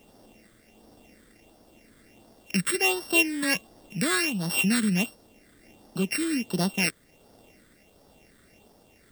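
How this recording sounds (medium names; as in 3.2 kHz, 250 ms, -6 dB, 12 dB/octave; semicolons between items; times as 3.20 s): a buzz of ramps at a fixed pitch in blocks of 16 samples; tremolo triangle 1.1 Hz, depth 35%; phasing stages 8, 1.4 Hz, lowest notch 790–2400 Hz; a quantiser's noise floor 12-bit, dither triangular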